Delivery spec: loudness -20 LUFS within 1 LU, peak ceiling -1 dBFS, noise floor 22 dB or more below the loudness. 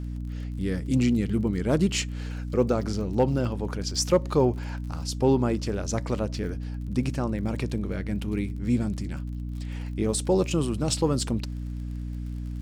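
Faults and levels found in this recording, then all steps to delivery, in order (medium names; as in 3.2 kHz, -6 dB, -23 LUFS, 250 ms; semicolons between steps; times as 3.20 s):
tick rate 30 per s; hum 60 Hz; highest harmonic 300 Hz; hum level -30 dBFS; loudness -27.5 LUFS; peak level -10.5 dBFS; loudness target -20.0 LUFS
-> de-click; hum notches 60/120/180/240/300 Hz; trim +7.5 dB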